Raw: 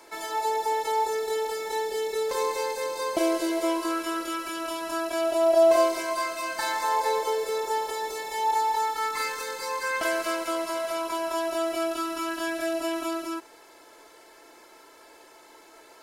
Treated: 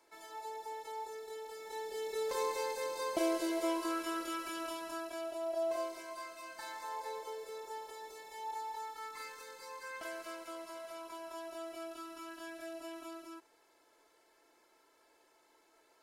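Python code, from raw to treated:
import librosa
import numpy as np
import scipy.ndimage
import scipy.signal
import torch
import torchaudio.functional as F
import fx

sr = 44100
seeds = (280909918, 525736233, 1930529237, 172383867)

y = fx.gain(x, sr, db=fx.line((1.43, -17.5), (2.27, -8.0), (4.61, -8.0), (5.41, -17.0)))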